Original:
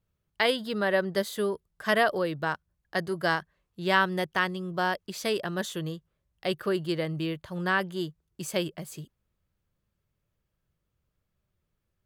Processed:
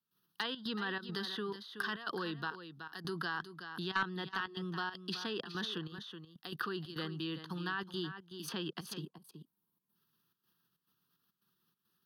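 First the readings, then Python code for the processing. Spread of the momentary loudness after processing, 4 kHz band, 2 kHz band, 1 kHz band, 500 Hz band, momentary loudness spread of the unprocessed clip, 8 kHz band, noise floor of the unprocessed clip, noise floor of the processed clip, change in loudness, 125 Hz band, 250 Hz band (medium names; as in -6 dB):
10 LU, -5.5 dB, -10.0 dB, -11.0 dB, -15.0 dB, 11 LU, -12.0 dB, -80 dBFS, under -85 dBFS, -10.5 dB, -9.0 dB, -9.0 dB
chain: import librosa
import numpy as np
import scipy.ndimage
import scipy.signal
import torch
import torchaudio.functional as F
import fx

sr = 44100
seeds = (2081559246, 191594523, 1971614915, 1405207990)

y = 10.0 ** (-12.5 / 20.0) * (np.abs((x / 10.0 ** (-12.5 / 20.0) + 3.0) % 4.0 - 2.0) - 1.0)
y = fx.high_shelf(y, sr, hz=12000.0, db=8.0)
y = fx.fixed_phaser(y, sr, hz=2200.0, stages=6)
y = fx.level_steps(y, sr, step_db=24)
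y = scipy.signal.sosfilt(scipy.signal.butter(4, 180.0, 'highpass', fs=sr, output='sos'), y)
y = 10.0 ** (-22.0 / 20.0) * np.tanh(y / 10.0 ** (-22.0 / 20.0))
y = fx.high_shelf(y, sr, hz=2100.0, db=6.5)
y = fx.step_gate(y, sr, bpm=138, pattern='.xxxx.xxx', floor_db=-12.0, edge_ms=4.5)
y = fx.env_lowpass_down(y, sr, base_hz=2800.0, full_db=-42.0)
y = y + 10.0 ** (-12.0 / 20.0) * np.pad(y, (int(374 * sr / 1000.0), 0))[:len(y)]
y = fx.spec_box(y, sr, start_s=9.02, length_s=0.94, low_hz=1100.0, high_hz=7200.0, gain_db=-10)
y = fx.band_squash(y, sr, depth_pct=40)
y = y * 10.0 ** (10.0 / 20.0)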